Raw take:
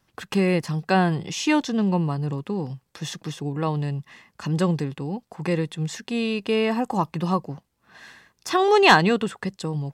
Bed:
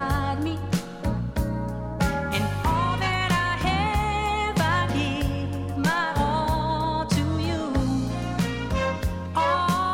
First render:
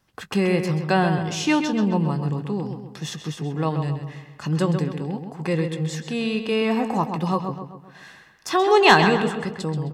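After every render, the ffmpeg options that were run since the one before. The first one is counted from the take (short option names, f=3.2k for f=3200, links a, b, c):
-filter_complex "[0:a]asplit=2[a][b];[b]adelay=19,volume=-13.5dB[c];[a][c]amix=inputs=2:normalize=0,asplit=2[d][e];[e]adelay=131,lowpass=f=3.7k:p=1,volume=-7dB,asplit=2[f][g];[g]adelay=131,lowpass=f=3.7k:p=1,volume=0.48,asplit=2[h][i];[i]adelay=131,lowpass=f=3.7k:p=1,volume=0.48,asplit=2[j][k];[k]adelay=131,lowpass=f=3.7k:p=1,volume=0.48,asplit=2[l][m];[m]adelay=131,lowpass=f=3.7k:p=1,volume=0.48,asplit=2[n][o];[o]adelay=131,lowpass=f=3.7k:p=1,volume=0.48[p];[d][f][h][j][l][n][p]amix=inputs=7:normalize=0"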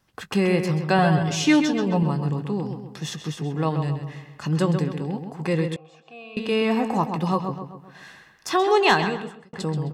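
-filter_complex "[0:a]asettb=1/sr,asplit=3[a][b][c];[a]atrim=end=0.984[d];[b]atrim=start=0.98:end=2.03,asetpts=PTS-STARTPTS,afade=t=in:d=0.004:c=qsin,afade=t=out:st=1.046:d=0.004:c=qsin,aecho=1:1:7.1:0.68,atrim=end_sample=46305[e];[c]atrim=start=2.026[f];[d][e]acrossfade=d=0.004:c1=hsin:c2=qsin[g];[g][f]acrossfade=d=0.004:c1=qsin:c2=hsin,asettb=1/sr,asplit=3[h][i][j];[h]atrim=end=5.764[k];[i]atrim=start=5.76:end=6.37,asetpts=PTS-STARTPTS,afade=t=in:d=0.004:c=qsin,afade=t=out:st=0.606:d=0.004:c=qsin,asplit=3[l][m][n];[l]bandpass=f=730:t=q:w=8,volume=0dB[o];[m]bandpass=f=1.09k:t=q:w=8,volume=-6dB[p];[n]bandpass=f=2.44k:t=q:w=8,volume=-9dB[q];[o][p][q]amix=inputs=3:normalize=0[r];[j]atrim=start=6.366[s];[k][r]acrossfade=d=0.004:c1=hsin:c2=qsin[t];[t][s]acrossfade=d=0.004:c1=qsin:c2=hsin,asplit=2[u][v];[u]atrim=end=9.53,asetpts=PTS-STARTPTS,afade=t=out:st=8.49:d=1.04[w];[v]atrim=start=9.53,asetpts=PTS-STARTPTS,afade=t=in:d=0.004:c=hsin[x];[w][x]concat=n=2:v=0:a=1"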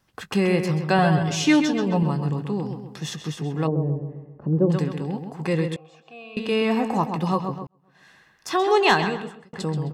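-filter_complex "[0:a]asplit=3[a][b][c];[a]afade=t=out:st=3.66:d=0.02[d];[b]lowpass=f=460:t=q:w=1.8,afade=t=in:st=3.66:d=0.02,afade=t=out:st=4.69:d=0.02[e];[c]afade=t=in:st=4.69:d=0.02[f];[d][e][f]amix=inputs=3:normalize=0,asplit=2[g][h];[g]atrim=end=7.67,asetpts=PTS-STARTPTS,afade=t=out:st=7.666:d=0.004:c=hsin[i];[h]atrim=start=7.67,asetpts=PTS-STARTPTS,afade=t=in:d=1.05[j];[i][j]concat=n=2:v=0:a=1"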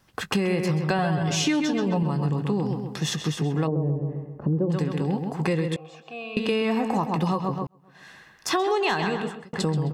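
-filter_complex "[0:a]asplit=2[a][b];[b]alimiter=limit=-15dB:level=0:latency=1,volume=-1dB[c];[a][c]amix=inputs=2:normalize=0,acompressor=threshold=-21dB:ratio=6"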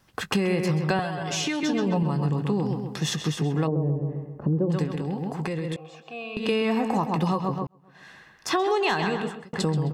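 -filter_complex "[0:a]asettb=1/sr,asplit=3[a][b][c];[a]atrim=end=0.994[d];[b]atrim=start=0.99:end=1.63,asetpts=PTS-STARTPTS,afade=t=in:d=0.004:c=qsin,afade=t=out:st=0.636:d=0.004:c=qsin,acrossover=split=370|2400[e][f][g];[e]acompressor=threshold=-35dB:ratio=4[h];[f]acompressor=threshold=-28dB:ratio=4[i];[g]acompressor=threshold=-28dB:ratio=4[j];[h][i][j]amix=inputs=3:normalize=0[k];[c]atrim=start=1.626[l];[d][k]acrossfade=d=0.004:c1=hsin:c2=qsin[m];[m][l]acrossfade=d=0.004:c1=qsin:c2=hsin,asettb=1/sr,asplit=3[n][o][p];[n]atrim=end=4.844[q];[o]atrim=start=4.84:end=6.43,asetpts=PTS-STARTPTS,afade=t=in:d=0.004:c=qsin,afade=t=out:st=1.586:d=0.004:c=qsin,acompressor=threshold=-25dB:ratio=6:attack=3.2:release=140:knee=1:detection=peak[r];[p]atrim=start=6.426[s];[q][r]acrossfade=d=0.004:c1=hsin:c2=qsin[t];[t][s]acrossfade=d=0.004:c1=qsin:c2=hsin,asettb=1/sr,asplit=3[u][v][w];[u]atrim=end=7.604[x];[v]atrim=start=7.6:end=8.66,asetpts=PTS-STARTPTS,afade=t=in:d=0.004:c=qsin,afade=t=out:st=1.056:d=0.004:c=qsin,highshelf=f=5.8k:g=-5.5[y];[w]atrim=start=8.656[z];[x][y]acrossfade=d=0.004:c1=hsin:c2=qsin[aa];[aa][z]acrossfade=d=0.004:c1=qsin:c2=hsin"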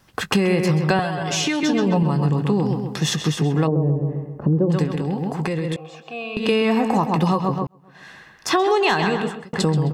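-af "volume=5.5dB"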